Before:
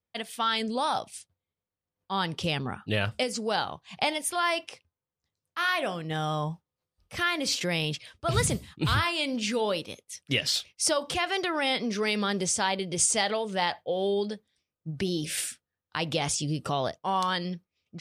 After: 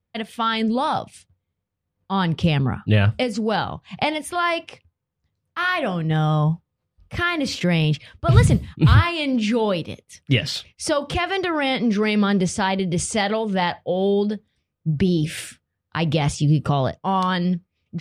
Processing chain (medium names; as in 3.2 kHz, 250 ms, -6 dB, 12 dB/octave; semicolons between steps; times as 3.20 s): tone controls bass +10 dB, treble -10 dB; trim +5.5 dB